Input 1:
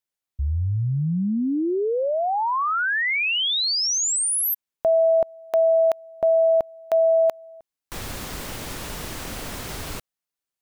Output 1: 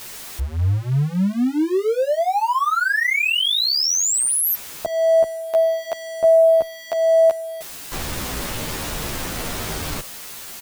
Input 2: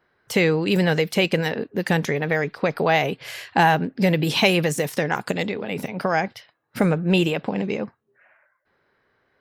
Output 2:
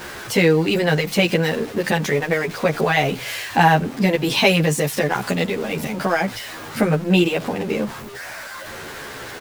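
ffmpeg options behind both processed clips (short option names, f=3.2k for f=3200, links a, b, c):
-filter_complex "[0:a]aeval=exprs='val(0)+0.5*0.0335*sgn(val(0))':c=same,asplit=2[a][b];[b]adelay=11.3,afreqshift=-1[c];[a][c]amix=inputs=2:normalize=1,volume=4.5dB"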